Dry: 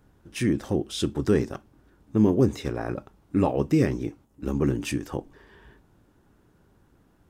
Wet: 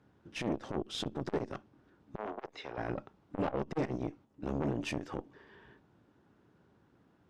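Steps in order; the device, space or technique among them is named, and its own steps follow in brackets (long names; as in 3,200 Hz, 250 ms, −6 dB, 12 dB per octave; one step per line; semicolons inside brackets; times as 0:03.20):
valve radio (band-pass filter 110–4,600 Hz; tube saturation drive 24 dB, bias 0.7; saturating transformer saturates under 390 Hz)
0:02.16–0:02.78: three-way crossover with the lows and the highs turned down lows −17 dB, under 490 Hz, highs −17 dB, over 5,300 Hz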